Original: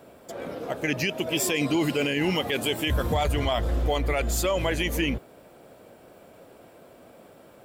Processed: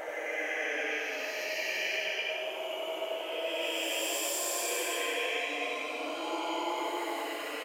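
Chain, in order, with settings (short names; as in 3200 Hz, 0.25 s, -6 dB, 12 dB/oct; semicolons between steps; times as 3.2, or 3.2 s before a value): HPF 580 Hz 24 dB/oct; tilt shelf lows +5 dB, about 1200 Hz; flange 1.6 Hz, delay 8.9 ms, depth 9.8 ms, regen -24%; Paulstretch 6.7×, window 0.25 s, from 0.78; echo 92 ms -4 dB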